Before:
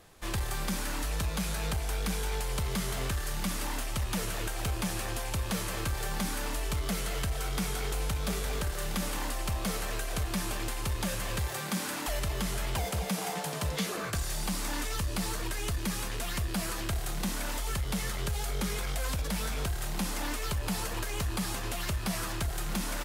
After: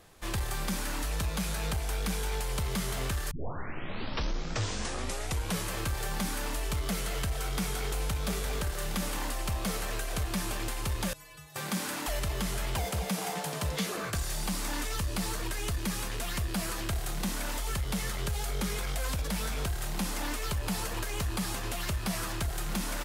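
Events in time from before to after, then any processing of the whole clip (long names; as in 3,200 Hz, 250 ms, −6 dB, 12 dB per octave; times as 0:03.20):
0:03.31: tape start 2.36 s
0:11.13–0:11.56: stiff-string resonator 150 Hz, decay 0.6 s, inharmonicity 0.008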